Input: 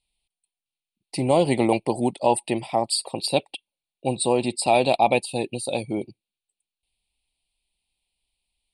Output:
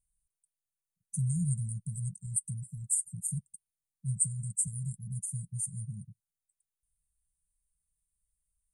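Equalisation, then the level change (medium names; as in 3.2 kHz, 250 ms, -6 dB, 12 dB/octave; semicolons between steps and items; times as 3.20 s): brick-wall FIR band-stop 190–6000 Hz; 0.0 dB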